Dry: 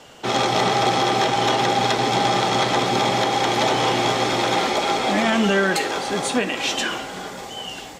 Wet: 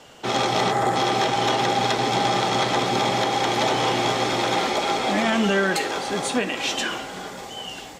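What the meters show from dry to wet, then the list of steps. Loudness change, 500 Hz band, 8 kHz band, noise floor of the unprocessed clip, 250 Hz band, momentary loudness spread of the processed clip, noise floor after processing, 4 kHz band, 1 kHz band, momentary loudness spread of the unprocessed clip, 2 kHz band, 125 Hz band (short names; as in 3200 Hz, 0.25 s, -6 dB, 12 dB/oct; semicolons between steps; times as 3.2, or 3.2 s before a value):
-2.0 dB, -2.0 dB, -2.0 dB, -35 dBFS, -2.0 dB, 6 LU, -37 dBFS, -2.0 dB, -2.0 dB, 7 LU, -2.0 dB, -2.0 dB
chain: spectral gain 0.71–0.96, 2100–6600 Hz -10 dB; gain -2 dB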